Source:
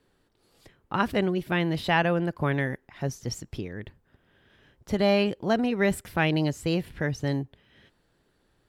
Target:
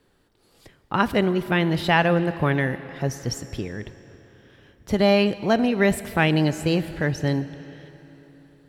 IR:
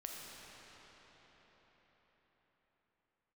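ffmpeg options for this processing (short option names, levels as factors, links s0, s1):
-filter_complex "[0:a]asplit=2[s0][s1];[1:a]atrim=start_sample=2205,asetrate=61740,aresample=44100,highshelf=f=10000:g=7[s2];[s1][s2]afir=irnorm=-1:irlink=0,volume=0.473[s3];[s0][s3]amix=inputs=2:normalize=0,volume=1.41"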